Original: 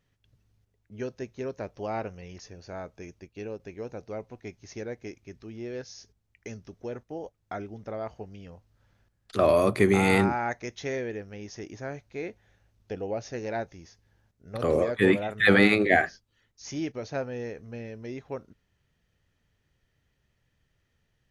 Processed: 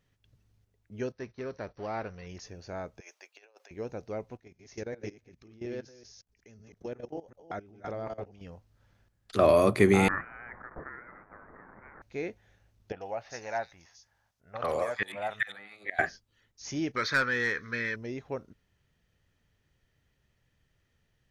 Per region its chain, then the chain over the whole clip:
0:01.12–0:02.27: mu-law and A-law mismatch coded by mu + noise gate −48 dBFS, range −12 dB + Chebyshev low-pass with heavy ripple 6,000 Hz, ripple 6 dB
0:03.00–0:03.71: high-pass filter 650 Hz 24 dB per octave + compressor whose output falls as the input rises −54 dBFS, ratio −0.5
0:04.37–0:08.41: delay that plays each chunk backwards 185 ms, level −3 dB + output level in coarse steps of 18 dB
0:10.08–0:12.02: spike at every zero crossing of −26 dBFS + Butterworth high-pass 2,200 Hz + voice inversion scrambler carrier 3,800 Hz
0:12.92–0:15.99: low shelf with overshoot 540 Hz −11.5 dB, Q 1.5 + gate with flip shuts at −15 dBFS, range −26 dB + multiband delay without the direct sound lows, highs 90 ms, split 3,400 Hz
0:16.96–0:17.96: flat-topped bell 2,000 Hz +12 dB 2.3 octaves + phaser with its sweep stopped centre 2,800 Hz, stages 6 + mid-hump overdrive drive 16 dB, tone 6,600 Hz, clips at −16.5 dBFS
whole clip: no processing

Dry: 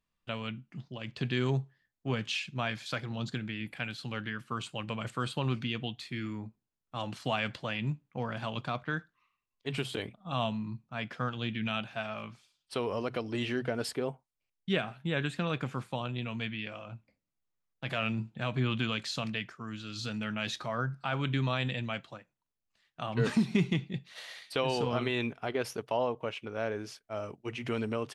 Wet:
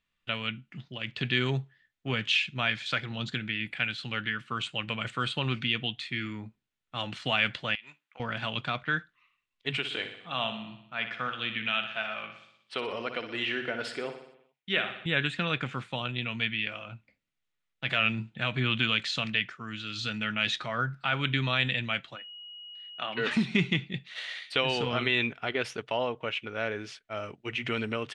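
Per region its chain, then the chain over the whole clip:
0:07.75–0:08.20: high-pass filter 850 Hz + downward compressor 10 to 1, threshold −47 dBFS
0:09.77–0:15.06: high-pass filter 400 Hz 6 dB per octave + high-shelf EQ 4,200 Hz −7 dB + repeating echo 61 ms, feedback 59%, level −9.5 dB
0:22.15–0:23.30: steady tone 2,900 Hz −51 dBFS + band-pass filter 290–4,600 Hz
whole clip: low-pass filter 8,700 Hz 24 dB per octave; flat-topped bell 2,300 Hz +9 dB; notch filter 1,600 Hz, Q 18

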